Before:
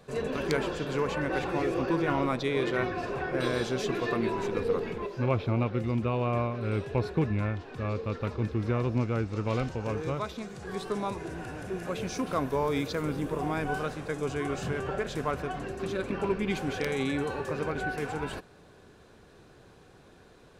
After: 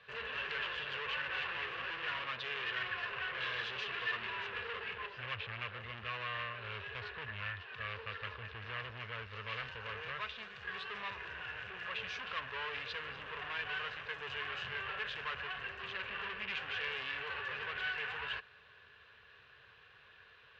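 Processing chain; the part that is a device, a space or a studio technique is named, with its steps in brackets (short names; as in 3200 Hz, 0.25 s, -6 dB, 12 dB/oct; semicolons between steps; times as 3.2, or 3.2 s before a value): scooped metal amplifier (tube stage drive 36 dB, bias 0.65; speaker cabinet 93–3600 Hz, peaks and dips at 160 Hz -7 dB, 440 Hz +6 dB, 760 Hz -5 dB, 1100 Hz +5 dB, 1700 Hz +9 dB, 2800 Hz +9 dB; passive tone stack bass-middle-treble 10-0-10); gain +5.5 dB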